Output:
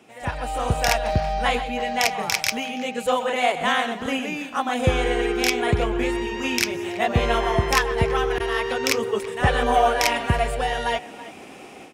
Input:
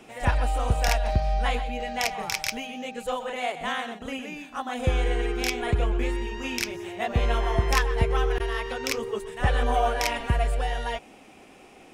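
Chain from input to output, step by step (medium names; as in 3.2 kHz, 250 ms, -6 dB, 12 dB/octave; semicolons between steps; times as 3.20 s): high-pass 86 Hz 12 dB/octave; level rider gain up to 12.5 dB; speakerphone echo 330 ms, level -16 dB; trim -3.5 dB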